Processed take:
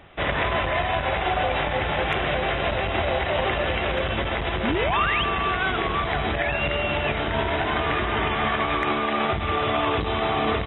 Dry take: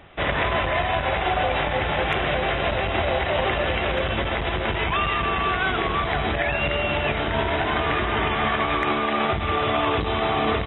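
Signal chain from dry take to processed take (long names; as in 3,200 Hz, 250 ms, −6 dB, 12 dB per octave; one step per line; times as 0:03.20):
sound drawn into the spectrogram rise, 0:04.63–0:05.24, 200–3,400 Hz −25 dBFS
level −1 dB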